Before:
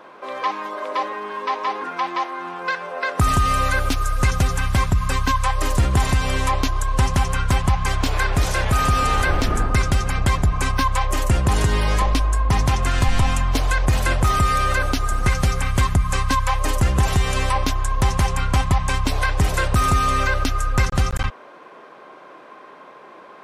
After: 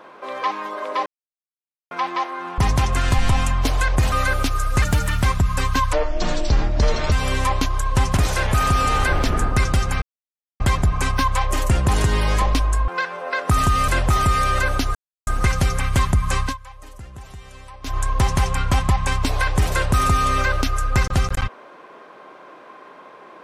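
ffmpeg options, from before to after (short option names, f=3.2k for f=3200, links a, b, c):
-filter_complex "[0:a]asplit=16[a][b][c][d][e][f][g][h][i][j][k][l][m][n][o][p];[a]atrim=end=1.06,asetpts=PTS-STARTPTS,afade=t=out:st=1.056:d=0.004:c=hsin[q];[b]atrim=start=1.06:end=1.91,asetpts=PTS-STARTPTS,volume=0[r];[c]atrim=start=1.91:end=2.582,asetpts=PTS-STARTPTS,afade=t=in:d=0.004:c=hsin[s];[d]atrim=start=12.478:end=14.022[t];[e]atrim=start=3.578:end=4.284[u];[f]atrim=start=4.28:end=4.74,asetpts=PTS-STARTPTS,asetrate=50715,aresample=44100[v];[g]atrim=start=4.736:end=5.454[w];[h]atrim=start=5.45:end=6.14,asetpts=PTS-STARTPTS,asetrate=25578,aresample=44100[x];[i]atrim=start=6.136:end=7.192[y];[j]atrim=start=8.348:end=10.2,asetpts=PTS-STARTPTS,afade=t=out:st=1.848:d=0.004:c=hsin,apad=pad_dur=0.58[z];[k]atrim=start=10.2:end=12.482,asetpts=PTS-STARTPTS,afade=t=in:d=0.004:c=hsin[aa];[l]atrim=start=2.578:end=3.582[ab];[m]atrim=start=14.018:end=15.09,asetpts=PTS-STARTPTS,afade=t=out:st=1.068:d=0.004:c=hsin,apad=pad_dur=0.32[ac];[n]atrim=start=15.09:end=16.39,asetpts=PTS-STARTPTS,afade=t=in:d=0.004:c=hsin,afade=t=out:st=1.15:d=0.15:silence=0.0944061[ad];[o]atrim=start=16.39:end=17.64,asetpts=PTS-STARTPTS,volume=-20.5dB[ae];[p]atrim=start=17.64,asetpts=PTS-STARTPTS,afade=t=in:d=0.15:silence=0.0944061[af];[q][r][s]concat=n=3:v=0:a=1[ag];[ag][t]acrossfade=d=0.004:c1=hsin:c2=hsin[ah];[ah][u]acrossfade=d=0.004:c1=hsin:c2=hsin[ai];[ai][v]acrossfade=d=0.004:c1=hsin:c2=hsin[aj];[aj][w]acrossfade=d=0.004:c1=hsin:c2=hsin[ak];[ak][x]acrossfade=d=0.004:c1=hsin:c2=hsin[al];[al][y]acrossfade=d=0.004:c1=hsin:c2=hsin[am];[z][aa]concat=n=2:v=0:a=1[an];[am][an]acrossfade=d=0.004:c1=hsin:c2=hsin[ao];[ao][ab]acrossfade=d=0.004:c1=hsin:c2=hsin[ap];[ac][ad][ae][af]concat=n=4:v=0:a=1[aq];[ap][aq]acrossfade=d=0.004:c1=hsin:c2=hsin"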